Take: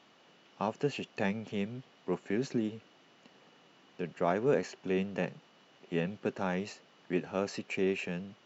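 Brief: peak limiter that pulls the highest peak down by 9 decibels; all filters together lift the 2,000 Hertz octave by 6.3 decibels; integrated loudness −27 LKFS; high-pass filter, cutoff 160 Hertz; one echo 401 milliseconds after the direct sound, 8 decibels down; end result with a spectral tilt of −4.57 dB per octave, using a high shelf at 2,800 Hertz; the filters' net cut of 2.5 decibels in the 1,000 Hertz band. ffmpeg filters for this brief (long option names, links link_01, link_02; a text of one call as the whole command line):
ffmpeg -i in.wav -af "highpass=160,equalizer=frequency=1000:width_type=o:gain=-6,equalizer=frequency=2000:width_type=o:gain=7.5,highshelf=frequency=2800:gain=4.5,alimiter=level_in=0.5dB:limit=-24dB:level=0:latency=1,volume=-0.5dB,aecho=1:1:401:0.398,volume=10dB" out.wav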